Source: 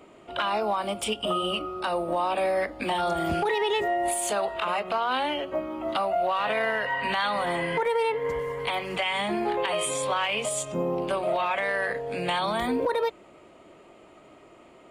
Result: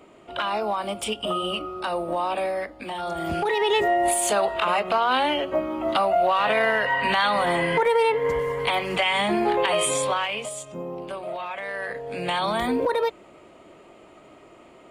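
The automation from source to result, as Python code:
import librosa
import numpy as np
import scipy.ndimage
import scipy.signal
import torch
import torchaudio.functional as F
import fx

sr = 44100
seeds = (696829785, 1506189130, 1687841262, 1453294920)

y = fx.gain(x, sr, db=fx.line((2.34, 0.5), (2.85, -6.0), (3.77, 5.0), (9.97, 5.0), (10.6, -6.0), (11.56, -6.0), (12.46, 2.5)))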